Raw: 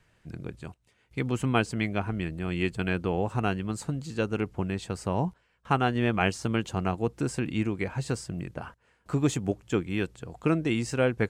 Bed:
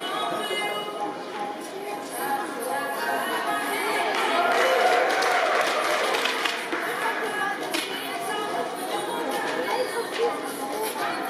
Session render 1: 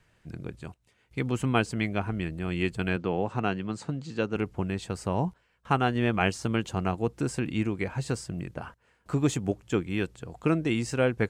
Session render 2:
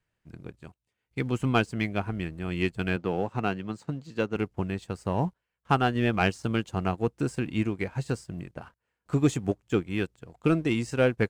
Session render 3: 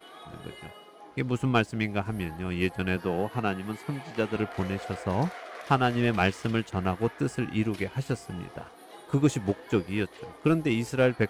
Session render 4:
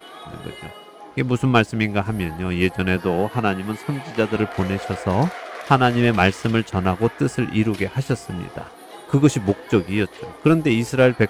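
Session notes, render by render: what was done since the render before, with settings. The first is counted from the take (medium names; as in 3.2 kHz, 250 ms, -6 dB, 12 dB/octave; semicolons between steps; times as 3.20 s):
2.96–4.36 s: band-pass 120–5700 Hz
waveshaping leveller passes 1; upward expansion 1.5:1, over -44 dBFS
add bed -19.5 dB
trim +8 dB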